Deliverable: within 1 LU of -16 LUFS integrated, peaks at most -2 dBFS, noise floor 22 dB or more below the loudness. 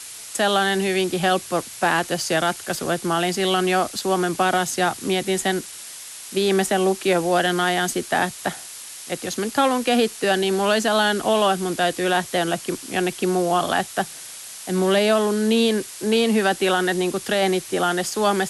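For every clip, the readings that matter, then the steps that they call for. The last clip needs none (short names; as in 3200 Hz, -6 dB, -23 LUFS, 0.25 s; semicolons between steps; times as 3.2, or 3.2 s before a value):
noise floor -38 dBFS; noise floor target -44 dBFS; loudness -21.5 LUFS; peak -8.0 dBFS; loudness target -16.0 LUFS
-> noise print and reduce 6 dB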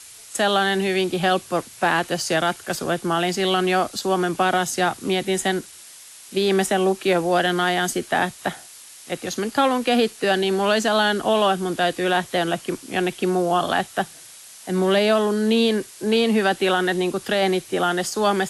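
noise floor -44 dBFS; loudness -21.5 LUFS; peak -8.0 dBFS; loudness target -16.0 LUFS
-> gain +5.5 dB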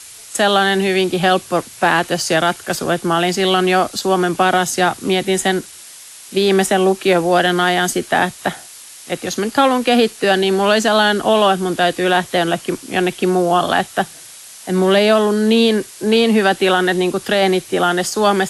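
loudness -16.0 LUFS; peak -2.5 dBFS; noise floor -38 dBFS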